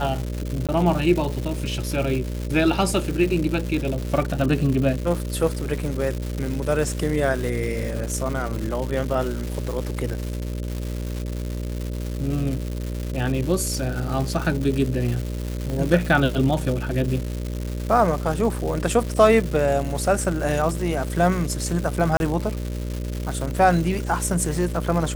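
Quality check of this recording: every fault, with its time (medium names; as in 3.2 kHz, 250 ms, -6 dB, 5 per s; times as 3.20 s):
buzz 60 Hz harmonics 10 -28 dBFS
crackle 350 per s -27 dBFS
0.67–0.69 s: dropout 17 ms
15.70 s: pop
22.17–22.20 s: dropout 31 ms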